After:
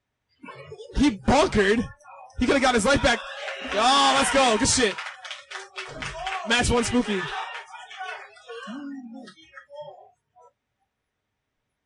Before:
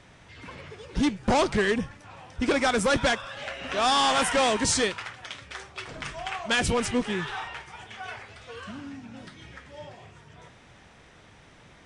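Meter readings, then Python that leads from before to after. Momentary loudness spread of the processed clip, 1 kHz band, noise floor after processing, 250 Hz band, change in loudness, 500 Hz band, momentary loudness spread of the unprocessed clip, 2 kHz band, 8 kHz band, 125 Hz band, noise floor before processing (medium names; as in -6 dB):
19 LU, +3.5 dB, -80 dBFS, +4.0 dB, +3.5 dB, +3.5 dB, 21 LU, +3.0 dB, +3.0 dB, +2.5 dB, -54 dBFS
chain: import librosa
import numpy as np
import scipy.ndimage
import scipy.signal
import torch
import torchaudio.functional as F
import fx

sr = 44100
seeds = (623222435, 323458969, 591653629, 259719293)

y = fx.noise_reduce_blind(x, sr, reduce_db=30)
y = fx.notch_comb(y, sr, f0_hz=170.0)
y = y * librosa.db_to_amplitude(4.5)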